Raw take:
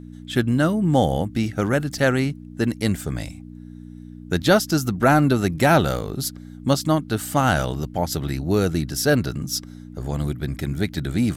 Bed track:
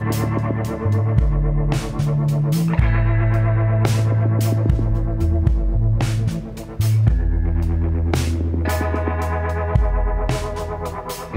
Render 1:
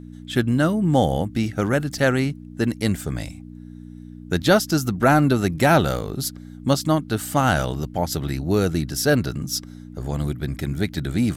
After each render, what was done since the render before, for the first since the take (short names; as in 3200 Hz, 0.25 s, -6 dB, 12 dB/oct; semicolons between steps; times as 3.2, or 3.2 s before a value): nothing audible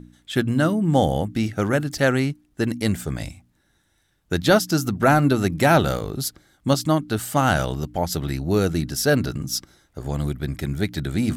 de-hum 60 Hz, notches 5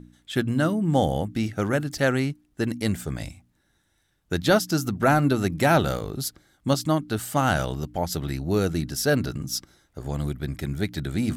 gain -3 dB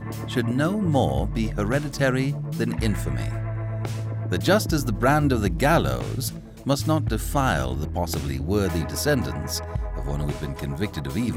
add bed track -11.5 dB